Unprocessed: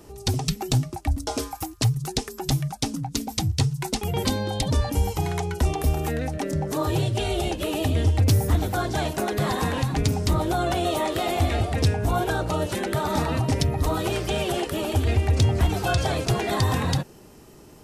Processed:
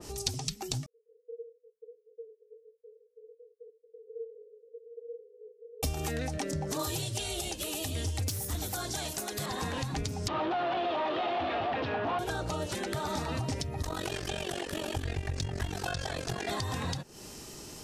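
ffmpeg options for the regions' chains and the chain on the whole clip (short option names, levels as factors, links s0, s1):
-filter_complex "[0:a]asettb=1/sr,asplit=3[s0][s1][s2];[s0]atrim=end=0.864[s3];[s1]atrim=start=0.86:end=5.83,asetpts=PTS-STARTPTS,afade=t=in:d=0.004:c=qsin,afade=t=out:st=4.966:d=0.004:c=qsin,flanger=delay=20:depth=7.7:speed=1.6,aeval=exprs='(tanh(17.8*val(0)+0.55)-tanh(0.55))/17.8':c=same,asuperpass=centerf=460:order=12:qfactor=6.7[s4];[s2]atrim=start=5.826[s5];[s3][s4]acrossfade=d=0.004:c1=hsin:c2=qsin[s6];[s6][s5]acrossfade=d=0.004:c1=qsin:c2=hsin,asettb=1/sr,asplit=3[s7][s8][s9];[s7]atrim=end=6.794[s10];[s8]atrim=start=6.79:end=9.46,asetpts=PTS-STARTPTS,afade=t=in:d=0.004:c=qsin,afade=t=out:st=2.666:d=0.004:c=qsin,aemphasis=mode=production:type=75kf,volume=4.73,asoftclip=hard,volume=0.211[s11];[s9]atrim=start=9.456[s12];[s10][s11]acrossfade=d=0.004:c1=hsin:c2=qsin[s13];[s13][s12]acrossfade=d=0.004:c1=qsin:c2=hsin,asettb=1/sr,asplit=3[s14][s15][s16];[s14]atrim=end=10.284[s17];[s15]atrim=start=10.28:end=12.19,asetpts=PTS-STARTPTS,afade=t=in:d=0.004:c=qsin,afade=t=out:st=1.906:d=0.004:c=qsin,asplit=2[s18][s19];[s19]highpass=f=720:p=1,volume=31.6,asoftclip=type=tanh:threshold=0.251[s20];[s18][s20]amix=inputs=2:normalize=0,lowpass=f=1700:p=1,volume=0.501,highpass=160,equalizer=f=180:t=q:w=4:g=-5,equalizer=f=440:t=q:w=4:g=-5,equalizer=f=1500:t=q:w=4:g=-3,equalizer=f=2100:t=q:w=4:g=-7,lowpass=f=3200:w=0.5412,lowpass=f=3200:w=1.3066[s21];[s16]atrim=start=12.186[s22];[s17][s21]acrossfade=d=0.004:c1=hsin:c2=qsin[s23];[s23][s22]acrossfade=d=0.004:c1=qsin:c2=hsin,asettb=1/sr,asplit=3[s24][s25][s26];[s24]atrim=end=13.824[s27];[s25]atrim=start=13.82:end=16.48,asetpts=PTS-STARTPTS,afade=t=in:d=0.004:c=qsin,afade=t=out:st=2.656:d=0.004:c=qsin,equalizer=f=1700:t=o:w=0.21:g=9,tremolo=f=46:d=0.857[s28];[s26]atrim=start=16.476[s29];[s27][s28]acrossfade=d=0.004:c1=hsin:c2=qsin[s30];[s30][s29]acrossfade=d=0.004:c1=qsin:c2=hsin,equalizer=f=5700:w=0.5:g=12.5,acompressor=threshold=0.0316:ratio=6,adynamicequalizer=threshold=0.00447:dfrequency=2200:dqfactor=0.7:tfrequency=2200:tqfactor=0.7:attack=5:release=100:ratio=0.375:range=3:mode=cutabove:tftype=highshelf"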